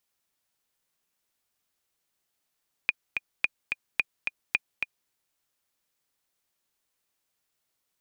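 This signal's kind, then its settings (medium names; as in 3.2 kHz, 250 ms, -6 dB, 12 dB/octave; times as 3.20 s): metronome 217 bpm, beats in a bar 2, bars 4, 2.44 kHz, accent 5.5 dB -9 dBFS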